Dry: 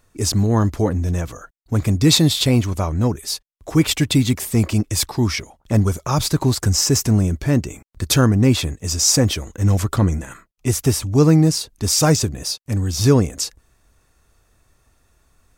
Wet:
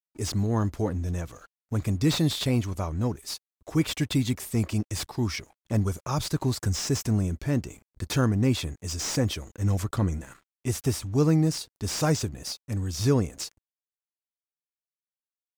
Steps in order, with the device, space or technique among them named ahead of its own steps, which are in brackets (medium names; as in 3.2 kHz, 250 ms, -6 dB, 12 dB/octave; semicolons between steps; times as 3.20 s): early transistor amplifier (crossover distortion -47 dBFS; slew-rate limiter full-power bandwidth 510 Hz); trim -8.5 dB